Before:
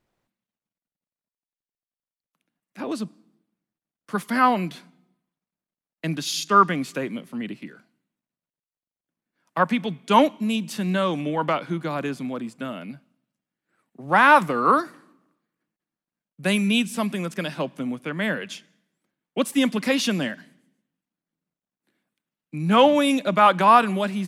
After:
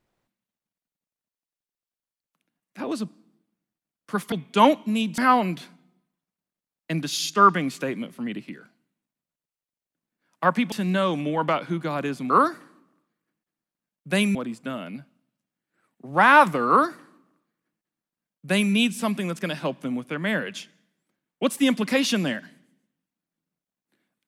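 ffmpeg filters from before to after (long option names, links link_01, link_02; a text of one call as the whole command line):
ffmpeg -i in.wav -filter_complex "[0:a]asplit=6[link_01][link_02][link_03][link_04][link_05][link_06];[link_01]atrim=end=4.322[link_07];[link_02]atrim=start=9.858:end=10.722[link_08];[link_03]atrim=start=4.318:end=9.862[link_09];[link_04]atrim=start=10.718:end=12.302[link_10];[link_05]atrim=start=14.628:end=16.682[link_11];[link_06]atrim=start=12.298[link_12];[link_07][link_08]acrossfade=duration=0.004:curve1=hsin:curve2=hsin[link_13];[link_13][link_09]acrossfade=duration=0.004:curve1=hsin:curve2=hsin[link_14];[link_14][link_10]acrossfade=duration=0.004:curve1=hsin:curve2=hsin[link_15];[link_15][link_11]acrossfade=duration=0.004:curve1=hsin:curve2=hsin[link_16];[link_16][link_12]acrossfade=duration=0.004:curve1=hsin:curve2=hsin" out.wav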